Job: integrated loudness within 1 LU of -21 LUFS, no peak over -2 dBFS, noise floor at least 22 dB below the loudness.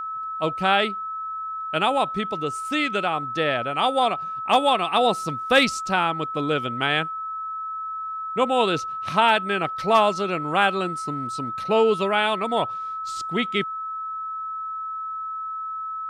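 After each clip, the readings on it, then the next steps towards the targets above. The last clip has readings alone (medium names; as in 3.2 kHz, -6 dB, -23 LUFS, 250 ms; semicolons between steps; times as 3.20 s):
steady tone 1.3 kHz; tone level -28 dBFS; loudness -23.5 LUFS; peak level -6.5 dBFS; loudness target -21.0 LUFS
-> band-stop 1.3 kHz, Q 30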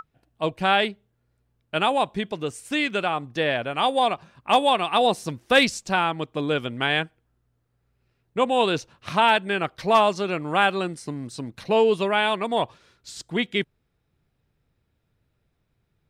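steady tone not found; loudness -23.0 LUFS; peak level -7.0 dBFS; loudness target -21.0 LUFS
-> trim +2 dB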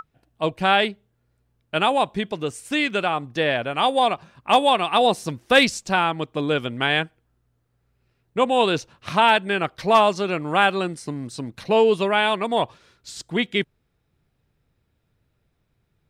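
loudness -21.0 LUFS; peak level -5.0 dBFS; noise floor -71 dBFS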